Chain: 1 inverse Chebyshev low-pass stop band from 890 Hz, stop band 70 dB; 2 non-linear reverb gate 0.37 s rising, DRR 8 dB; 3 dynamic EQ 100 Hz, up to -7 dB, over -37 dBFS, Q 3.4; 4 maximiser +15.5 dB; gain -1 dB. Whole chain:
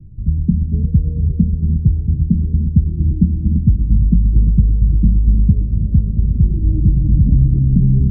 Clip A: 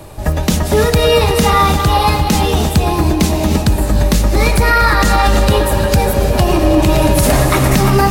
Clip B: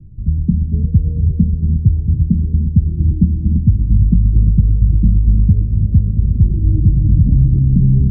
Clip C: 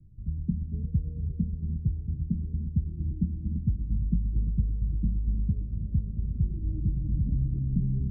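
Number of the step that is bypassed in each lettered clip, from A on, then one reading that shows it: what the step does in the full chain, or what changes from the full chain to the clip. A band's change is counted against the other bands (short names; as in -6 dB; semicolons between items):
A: 1, loudness change +3.0 LU; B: 3, loudness change +1.0 LU; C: 4, crest factor change +4.0 dB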